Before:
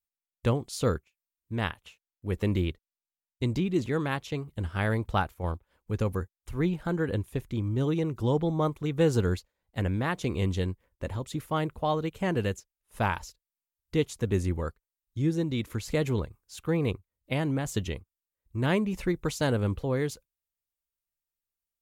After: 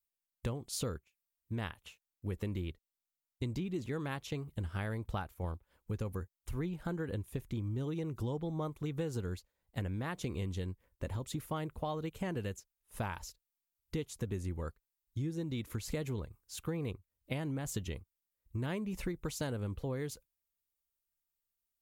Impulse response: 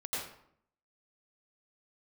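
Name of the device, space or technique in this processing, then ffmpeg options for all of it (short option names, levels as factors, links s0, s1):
ASMR close-microphone chain: -af "lowshelf=f=190:g=3,acompressor=threshold=0.0282:ratio=6,highshelf=f=8500:g=7,volume=0.708"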